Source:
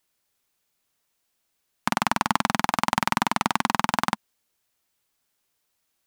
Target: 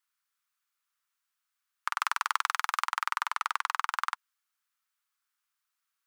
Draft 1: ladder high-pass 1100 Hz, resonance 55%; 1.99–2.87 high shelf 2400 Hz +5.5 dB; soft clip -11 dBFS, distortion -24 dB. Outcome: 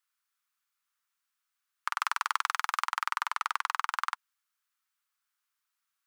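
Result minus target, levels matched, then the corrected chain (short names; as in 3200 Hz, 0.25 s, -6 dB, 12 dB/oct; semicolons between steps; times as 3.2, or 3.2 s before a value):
soft clip: distortion +12 dB
ladder high-pass 1100 Hz, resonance 55%; 1.99–2.87 high shelf 2400 Hz +5.5 dB; soft clip -4.5 dBFS, distortion -36 dB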